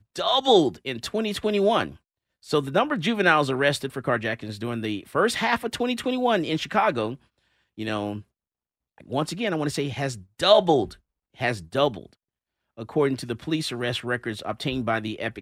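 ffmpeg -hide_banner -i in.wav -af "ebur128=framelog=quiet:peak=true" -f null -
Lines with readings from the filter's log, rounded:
Integrated loudness:
  I:         -24.6 LUFS
  Threshold: -35.1 LUFS
Loudness range:
  LRA:         4.9 LU
  Threshold: -45.5 LUFS
  LRA low:   -28.7 LUFS
  LRA high:  -23.8 LUFS
True peak:
  Peak:       -3.7 dBFS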